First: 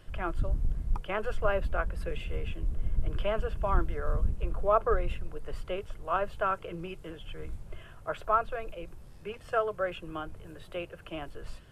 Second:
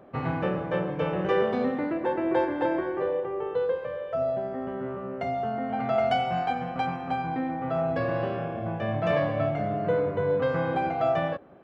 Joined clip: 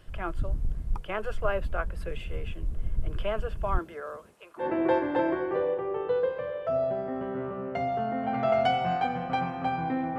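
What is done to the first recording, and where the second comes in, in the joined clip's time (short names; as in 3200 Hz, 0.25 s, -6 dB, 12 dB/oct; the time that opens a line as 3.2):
first
3.77–4.68 HPF 200 Hz -> 1300 Hz
4.62 switch to second from 2.08 s, crossfade 0.12 s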